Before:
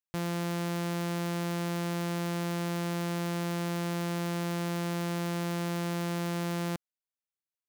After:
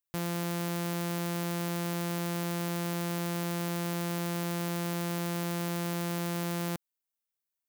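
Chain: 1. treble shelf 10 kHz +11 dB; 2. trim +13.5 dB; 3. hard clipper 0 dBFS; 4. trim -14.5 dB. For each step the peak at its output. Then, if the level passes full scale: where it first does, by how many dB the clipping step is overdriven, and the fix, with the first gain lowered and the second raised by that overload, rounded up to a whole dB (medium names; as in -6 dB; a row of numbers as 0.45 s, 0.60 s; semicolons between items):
-18.0 dBFS, -4.5 dBFS, -4.5 dBFS, -19.0 dBFS; nothing clips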